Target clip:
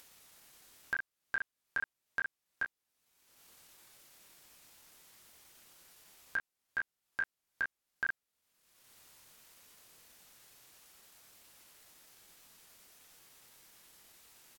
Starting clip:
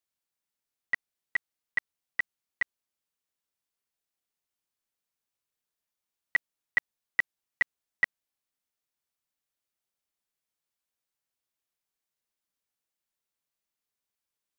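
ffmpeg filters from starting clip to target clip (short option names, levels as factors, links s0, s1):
-af "aecho=1:1:19|51:0.422|0.299,alimiter=level_in=1.12:limit=0.0631:level=0:latency=1:release=19,volume=0.891,asetrate=36028,aresample=44100,atempo=1.22405,acompressor=mode=upward:threshold=0.0141:ratio=2.5,volume=0.891"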